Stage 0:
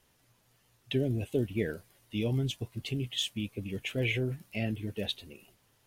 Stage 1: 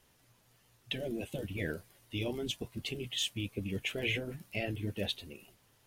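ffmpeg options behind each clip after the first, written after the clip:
-af "afftfilt=real='re*lt(hypot(re,im),0.178)':imag='im*lt(hypot(re,im),0.178)':win_size=1024:overlap=0.75,volume=1.12"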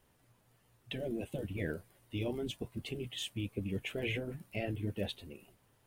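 -af "highshelf=f=2600:g=-10.5,aexciter=amount=2.2:drive=3.4:freq=8000"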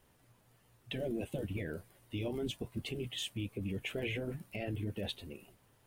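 -af "alimiter=level_in=2.11:limit=0.0631:level=0:latency=1:release=58,volume=0.473,volume=1.26"

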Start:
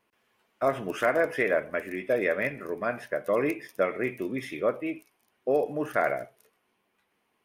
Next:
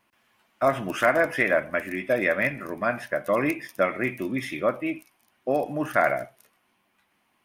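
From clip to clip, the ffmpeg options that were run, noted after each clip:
-af "equalizer=f=440:w=3.8:g=-12.5,volume=1.88"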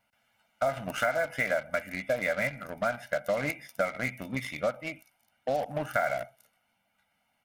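-filter_complex "[0:a]aecho=1:1:1.4:0.89,asplit=2[s0][s1];[s1]acrusher=bits=3:mix=0:aa=0.5,volume=0.668[s2];[s0][s2]amix=inputs=2:normalize=0,acompressor=threshold=0.126:ratio=4,volume=0.422"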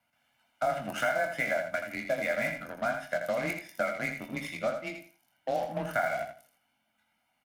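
-filter_complex "[0:a]afreqshift=22,asplit=2[s0][s1];[s1]adelay=23,volume=0.422[s2];[s0][s2]amix=inputs=2:normalize=0,aecho=1:1:82|164|246:0.422|0.0928|0.0204,volume=0.75"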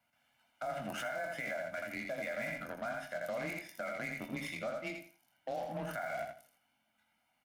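-af "acompressor=threshold=0.0316:ratio=6,alimiter=level_in=1.58:limit=0.0631:level=0:latency=1:release=22,volume=0.631,volume=0.794"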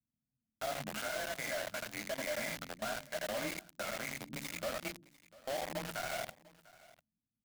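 -filter_complex "[0:a]flanger=delay=3.3:depth=6.1:regen=59:speed=0.87:shape=sinusoidal,acrossover=split=280[s0][s1];[s1]acrusher=bits=6:mix=0:aa=0.000001[s2];[s0][s2]amix=inputs=2:normalize=0,aecho=1:1:697:0.0841,volume=1.41"

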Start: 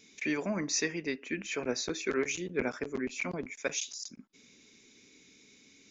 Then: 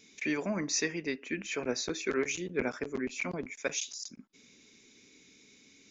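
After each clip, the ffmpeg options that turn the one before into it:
-af anull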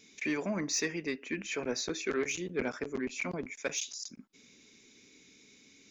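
-af "asoftclip=type=tanh:threshold=0.0841"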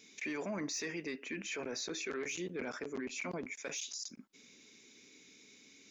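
-af "lowshelf=f=120:g=-11,alimiter=level_in=2.51:limit=0.0631:level=0:latency=1:release=18,volume=0.398"

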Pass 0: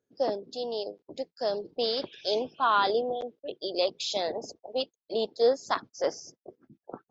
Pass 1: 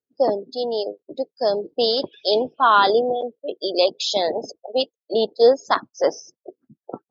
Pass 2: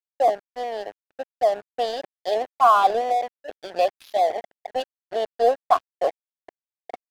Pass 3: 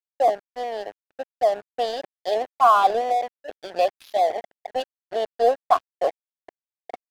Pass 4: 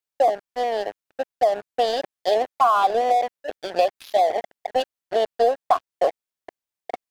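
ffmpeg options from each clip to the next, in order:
-af "afftdn=nr=21:nf=-40,volume=2.82"
-filter_complex "[0:a]asplit=3[s0][s1][s2];[s0]bandpass=f=730:t=q:w=8,volume=1[s3];[s1]bandpass=f=1090:t=q:w=8,volume=0.501[s4];[s2]bandpass=f=2440:t=q:w=8,volume=0.355[s5];[s3][s4][s5]amix=inputs=3:normalize=0,aeval=exprs='sgn(val(0))*max(abs(val(0))-0.00794,0)':c=same,volume=2.66"
-af anull
-af "acompressor=threshold=0.1:ratio=6,volume=1.88"

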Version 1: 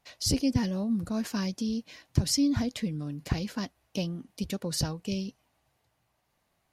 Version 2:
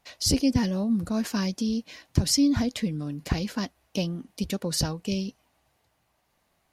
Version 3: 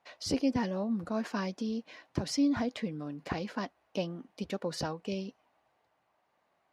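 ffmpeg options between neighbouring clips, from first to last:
-af "equalizer=f=120:w=3:g=-5,volume=1.58"
-af "bandpass=f=840:t=q:w=0.62:csg=0"

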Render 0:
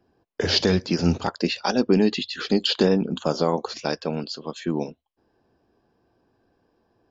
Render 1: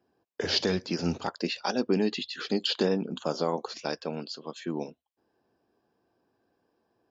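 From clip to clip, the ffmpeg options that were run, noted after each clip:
-af "highpass=f=190:p=1,volume=0.531"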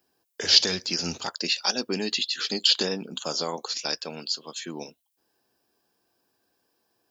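-af "crystalizer=i=9:c=0,volume=0.562"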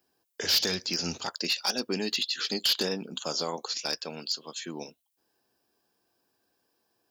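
-af "asoftclip=type=hard:threshold=0.126,volume=0.794"

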